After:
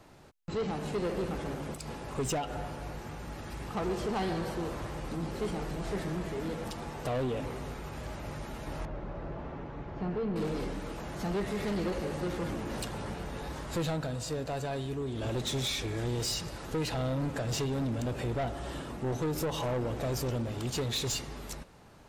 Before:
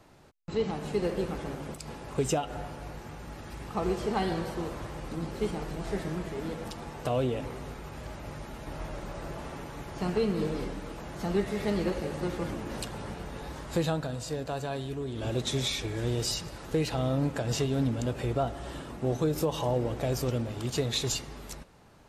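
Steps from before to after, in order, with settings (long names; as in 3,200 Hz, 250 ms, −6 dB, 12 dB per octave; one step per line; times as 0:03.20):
soft clipping −29 dBFS, distortion −10 dB
0:08.85–0:10.36: head-to-tape spacing loss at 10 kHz 35 dB
level +1.5 dB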